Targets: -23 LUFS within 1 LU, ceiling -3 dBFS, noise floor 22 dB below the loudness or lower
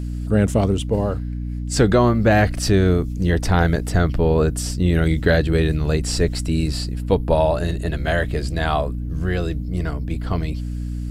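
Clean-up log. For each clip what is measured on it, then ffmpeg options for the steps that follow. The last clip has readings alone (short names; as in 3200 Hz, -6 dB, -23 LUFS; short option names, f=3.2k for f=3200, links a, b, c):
hum 60 Hz; harmonics up to 300 Hz; hum level -24 dBFS; loudness -20.5 LUFS; peak -2.0 dBFS; loudness target -23.0 LUFS
-> -af "bandreject=f=60:t=h:w=4,bandreject=f=120:t=h:w=4,bandreject=f=180:t=h:w=4,bandreject=f=240:t=h:w=4,bandreject=f=300:t=h:w=4"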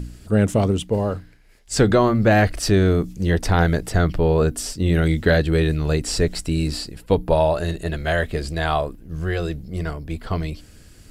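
hum none; loudness -21.0 LUFS; peak -3.0 dBFS; loudness target -23.0 LUFS
-> -af "volume=-2dB"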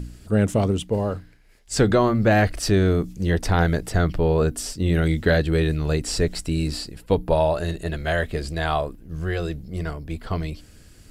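loudness -23.0 LUFS; peak -5.0 dBFS; noise floor -49 dBFS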